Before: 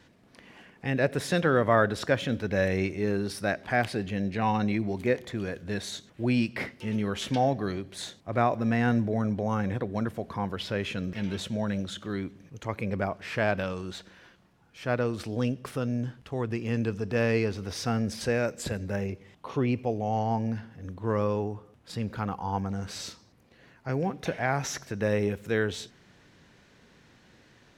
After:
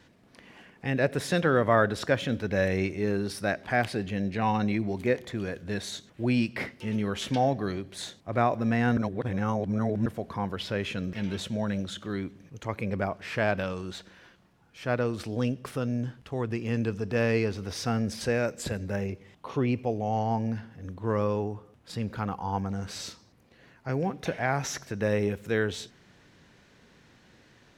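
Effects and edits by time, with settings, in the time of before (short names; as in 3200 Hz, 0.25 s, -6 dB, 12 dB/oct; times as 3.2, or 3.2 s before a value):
8.97–10.06 reverse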